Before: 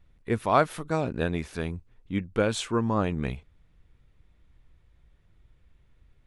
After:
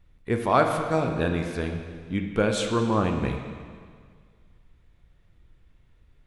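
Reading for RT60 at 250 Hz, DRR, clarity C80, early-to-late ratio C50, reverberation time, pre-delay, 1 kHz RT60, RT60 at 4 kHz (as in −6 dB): 1.8 s, 3.5 dB, 6.5 dB, 5.5 dB, 1.9 s, 7 ms, 1.9 s, 1.8 s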